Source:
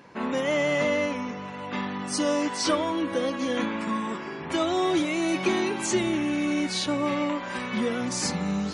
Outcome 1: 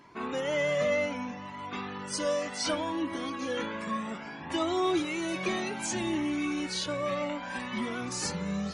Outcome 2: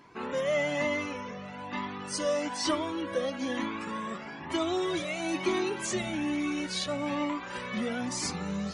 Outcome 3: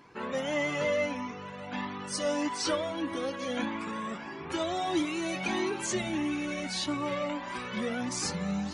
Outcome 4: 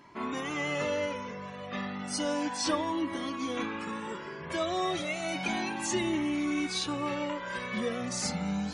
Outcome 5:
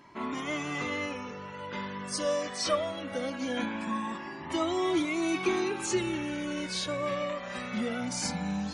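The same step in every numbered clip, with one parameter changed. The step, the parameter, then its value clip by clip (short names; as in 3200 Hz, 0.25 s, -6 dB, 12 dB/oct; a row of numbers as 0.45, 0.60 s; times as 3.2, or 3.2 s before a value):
cascading flanger, rate: 0.64, 1.1, 1.6, 0.32, 0.21 Hz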